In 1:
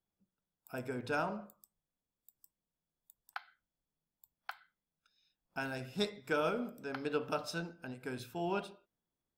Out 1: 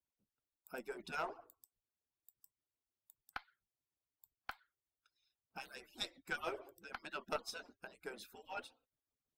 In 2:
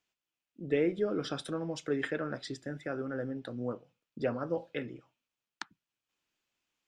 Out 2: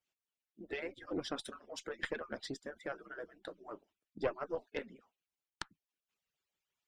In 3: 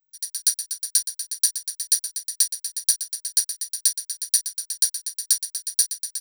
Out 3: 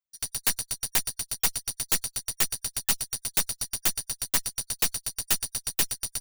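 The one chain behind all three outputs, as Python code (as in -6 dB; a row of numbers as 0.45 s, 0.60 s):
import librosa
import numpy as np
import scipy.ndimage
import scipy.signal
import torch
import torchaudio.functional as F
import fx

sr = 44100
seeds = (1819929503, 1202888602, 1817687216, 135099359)

y = fx.hpss_only(x, sr, part='percussive')
y = fx.cheby_harmonics(y, sr, harmonics=(8,), levels_db=(-14,), full_scale_db=-1.0)
y = (np.mod(10.0 ** (10.0 / 20.0) * y + 1.0, 2.0) - 1.0) / 10.0 ** (10.0 / 20.0)
y = y * librosa.db_to_amplitude(-2.5)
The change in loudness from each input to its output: -7.5 LU, -8.0 LU, -4.5 LU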